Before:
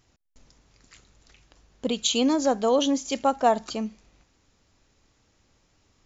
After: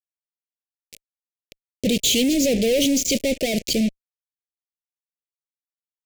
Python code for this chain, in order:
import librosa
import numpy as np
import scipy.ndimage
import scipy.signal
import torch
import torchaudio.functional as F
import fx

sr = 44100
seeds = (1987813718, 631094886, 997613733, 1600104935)

y = fx.fuzz(x, sr, gain_db=43.0, gate_db=-39.0)
y = scipy.signal.sosfilt(scipy.signal.cheby1(3, 1.0, [560.0, 2300.0], 'bandstop', fs=sr, output='sos'), y)
y = y * librosa.db_to_amplitude(-3.0)